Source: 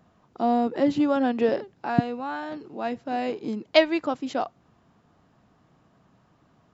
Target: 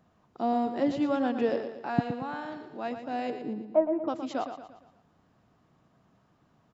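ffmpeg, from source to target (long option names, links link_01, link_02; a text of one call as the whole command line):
ffmpeg -i in.wav -filter_complex "[0:a]asettb=1/sr,asplit=3[link_01][link_02][link_03];[link_01]atrim=end=3.304[link_04];[link_02]atrim=start=3.3:end=4.08,asetpts=PTS-STARTPTS,afade=type=in:duration=0.004:curve=qsin,afade=type=out:start_time=0.776:duration=0.004:curve=qsin,lowpass=frequency=1000:width=0.5412,lowpass=frequency=1000:width=1.3066[link_05];[link_03]atrim=start=4.076[link_06];[link_04][link_05]acrossfade=duration=0.004:curve1=hsin:curve2=qsin[link_07];[link_07][link_06]acrossfade=duration=0.004:curve1=qsin:curve2=hsin,aecho=1:1:116|232|348|464|580:0.355|0.163|0.0751|0.0345|0.0159,volume=-5dB" out.wav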